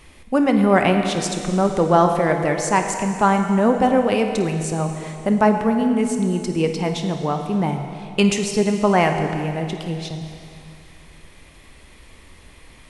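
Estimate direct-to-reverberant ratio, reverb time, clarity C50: 5.0 dB, 2.5 s, 5.5 dB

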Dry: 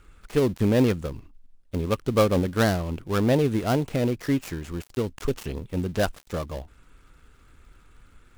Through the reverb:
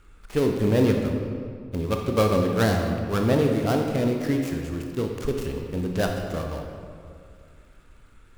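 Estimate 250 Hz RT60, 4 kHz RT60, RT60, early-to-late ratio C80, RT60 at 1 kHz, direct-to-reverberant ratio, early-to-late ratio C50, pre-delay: 2.3 s, 1.3 s, 2.2 s, 4.5 dB, 2.1 s, 2.0 dB, 3.5 dB, 20 ms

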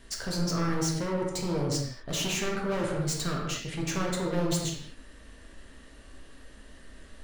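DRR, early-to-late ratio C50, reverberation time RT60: −2.5 dB, 1.5 dB, non-exponential decay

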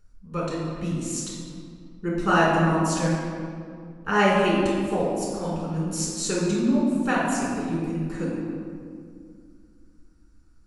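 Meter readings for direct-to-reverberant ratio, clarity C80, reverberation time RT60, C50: −6.5 dB, 1.5 dB, 2.2 s, −1.0 dB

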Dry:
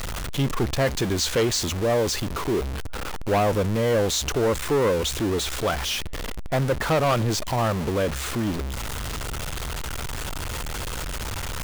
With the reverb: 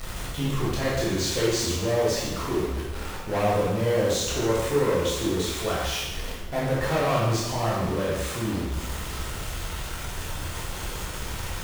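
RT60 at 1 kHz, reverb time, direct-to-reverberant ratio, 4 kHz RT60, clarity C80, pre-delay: 1.1 s, 1.1 s, −7.0 dB, 1.1 s, 2.5 dB, 6 ms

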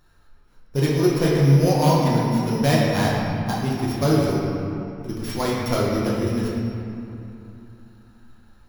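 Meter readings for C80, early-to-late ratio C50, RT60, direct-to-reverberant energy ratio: 0.0 dB, −1.5 dB, 2.9 s, −6.5 dB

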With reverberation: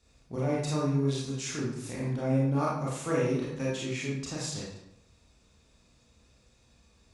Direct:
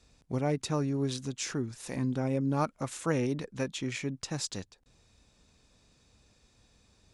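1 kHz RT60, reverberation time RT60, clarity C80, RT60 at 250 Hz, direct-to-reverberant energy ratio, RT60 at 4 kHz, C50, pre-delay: 0.75 s, 0.80 s, 4.5 dB, 0.80 s, −6.5 dB, 0.55 s, 0.5 dB, 26 ms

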